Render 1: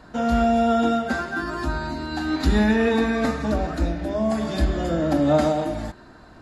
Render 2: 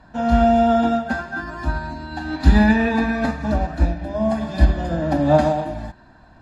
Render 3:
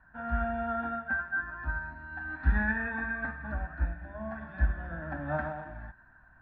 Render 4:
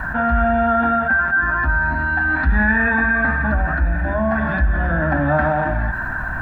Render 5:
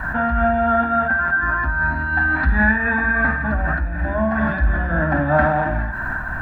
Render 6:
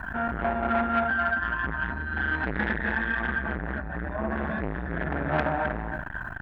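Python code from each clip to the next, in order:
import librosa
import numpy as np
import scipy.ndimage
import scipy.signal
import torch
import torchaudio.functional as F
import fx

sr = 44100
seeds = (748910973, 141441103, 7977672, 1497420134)

y1 = fx.lowpass(x, sr, hz=3500.0, slope=6)
y1 = y1 + 0.54 * np.pad(y1, (int(1.2 * sr / 1000.0), 0))[:len(y1)]
y1 = fx.upward_expand(y1, sr, threshold_db=-29.0, expansion=1.5)
y1 = F.gain(torch.from_numpy(y1), 5.5).numpy()
y2 = fx.peak_eq(y1, sr, hz=400.0, db=-12.5, octaves=3.0)
y2 = fx.rider(y2, sr, range_db=3, speed_s=2.0)
y2 = fx.ladder_lowpass(y2, sr, hz=1700.0, resonance_pct=65)
y3 = fx.env_flatten(y2, sr, amount_pct=70)
y3 = F.gain(torch.from_numpy(y3), 6.5).numpy()
y4 = fx.room_flutter(y3, sr, wall_m=8.7, rt60_s=0.24)
y4 = fx.am_noise(y4, sr, seeds[0], hz=5.7, depth_pct=60)
y4 = F.gain(torch.from_numpy(y4), 2.0).numpy()
y5 = y4 + 10.0 ** (-4.5 / 20.0) * np.pad(y4, (int(260 * sr / 1000.0), 0))[:len(y4)]
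y5 = fx.transformer_sat(y5, sr, knee_hz=1200.0)
y5 = F.gain(torch.from_numpy(y5), -7.0).numpy()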